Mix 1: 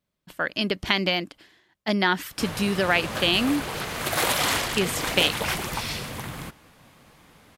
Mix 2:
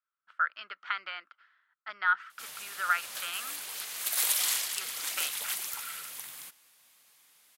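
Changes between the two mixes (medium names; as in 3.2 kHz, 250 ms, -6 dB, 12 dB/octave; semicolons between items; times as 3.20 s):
speech: add ladder band-pass 1.4 kHz, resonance 85%; background: add differentiator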